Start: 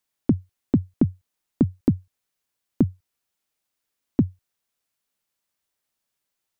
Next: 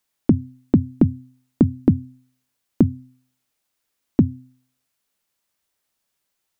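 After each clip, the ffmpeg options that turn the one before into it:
ffmpeg -i in.wav -af "bandreject=frequency=128:width_type=h:width=4,bandreject=frequency=256:width_type=h:width=4,volume=4.5dB" out.wav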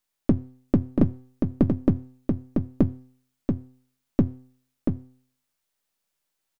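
ffmpeg -i in.wav -af "aeval=exprs='if(lt(val(0),0),0.447*val(0),val(0))':channel_layout=same,aecho=1:1:684:0.596,volume=-2.5dB" out.wav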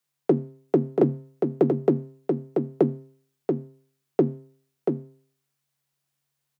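ffmpeg -i in.wav -af "afreqshift=140" out.wav

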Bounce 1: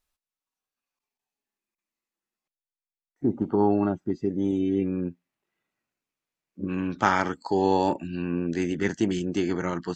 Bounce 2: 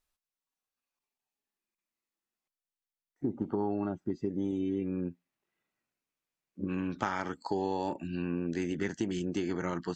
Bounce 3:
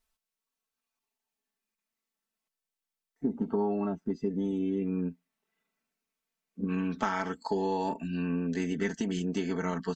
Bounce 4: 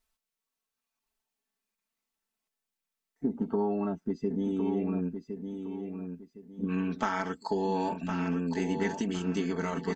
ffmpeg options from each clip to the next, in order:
ffmpeg -i in.wav -af "acompressor=threshold=-25dB:ratio=6,volume=-3dB" out.wav
ffmpeg -i in.wav -af "aecho=1:1:4.5:0.84" out.wav
ffmpeg -i in.wav -af "aecho=1:1:1061|2122|3183|4244:0.422|0.122|0.0355|0.0103" out.wav

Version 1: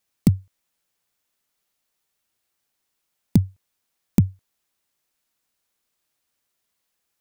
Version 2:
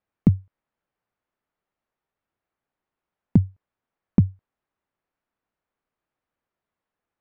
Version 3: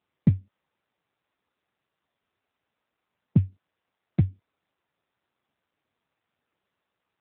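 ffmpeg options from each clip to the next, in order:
ffmpeg -i in.wav -af "lowpass=1500" out.wav
ffmpeg -i in.wav -ar 8000 -c:a libopencore_amrnb -b:a 7400 out.amr

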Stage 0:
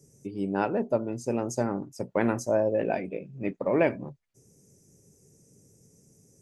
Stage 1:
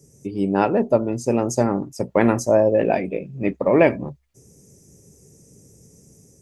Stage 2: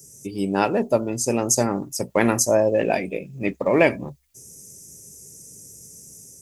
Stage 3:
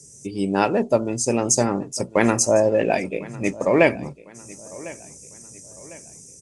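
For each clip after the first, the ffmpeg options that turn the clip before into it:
ffmpeg -i in.wav -af "equalizer=frequency=66:width_type=o:width=0.21:gain=12.5,bandreject=frequency=1500:width=14,dynaudnorm=framelen=100:gausssize=5:maxgain=3dB,volume=5.5dB" out.wav
ffmpeg -i in.wav -af "crystalizer=i=5:c=0,volume=-3dB" out.wav
ffmpeg -i in.wav -af "aecho=1:1:1052|2104|3156:0.1|0.04|0.016,aresample=22050,aresample=44100,volume=1dB" out.wav

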